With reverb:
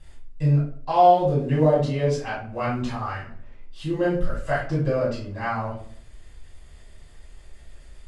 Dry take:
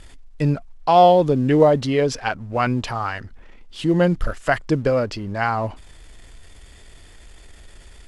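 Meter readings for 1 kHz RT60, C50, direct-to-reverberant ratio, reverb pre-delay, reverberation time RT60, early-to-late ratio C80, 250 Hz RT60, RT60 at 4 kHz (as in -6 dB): 0.45 s, 4.0 dB, -9.5 dB, 3 ms, 0.55 s, 9.0 dB, 0.70 s, 0.35 s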